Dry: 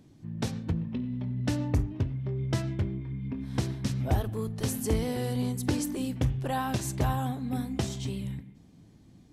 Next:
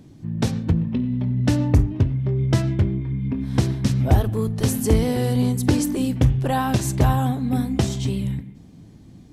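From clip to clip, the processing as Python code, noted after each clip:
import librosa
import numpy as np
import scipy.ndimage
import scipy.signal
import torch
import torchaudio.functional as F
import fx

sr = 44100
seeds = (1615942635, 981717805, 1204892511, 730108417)

y = fx.low_shelf(x, sr, hz=450.0, db=3.5)
y = y * 10.0 ** (7.0 / 20.0)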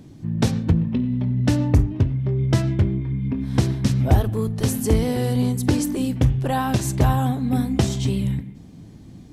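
y = fx.rider(x, sr, range_db=3, speed_s=2.0)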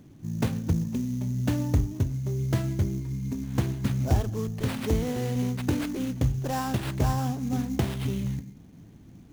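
y = fx.sample_hold(x, sr, seeds[0], rate_hz=6400.0, jitter_pct=20)
y = y * 10.0 ** (-7.0 / 20.0)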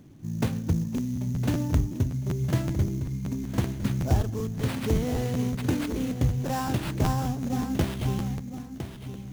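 y = fx.echo_feedback(x, sr, ms=1009, feedback_pct=15, wet_db=-10)
y = fx.buffer_crackle(y, sr, first_s=0.96, period_s=0.19, block=512, kind='repeat')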